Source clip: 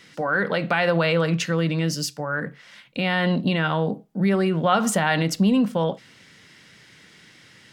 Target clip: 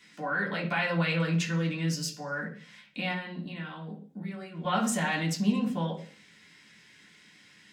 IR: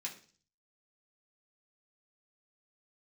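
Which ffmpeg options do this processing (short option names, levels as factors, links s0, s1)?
-filter_complex "[0:a]asettb=1/sr,asplit=3[s0][s1][s2];[s0]atrim=end=3.114[s3];[s1]atrim=start=3.11:end=4.65,asetpts=PTS-STARTPTS,afade=t=in:d=0.004:c=qsin,afade=t=out:st=1.536:d=0.004:c=qsin,acompressor=threshold=0.0398:ratio=6[s4];[s2]atrim=start=4.646[s5];[s3][s4]acrossfade=d=0.004:c1=hsin:c2=qsin[s6];[s6][s5]acrossfade=d=0.004:c1=qsin:c2=hsin[s7];[1:a]atrim=start_sample=2205[s8];[s7][s8]afir=irnorm=-1:irlink=0,volume=0.562"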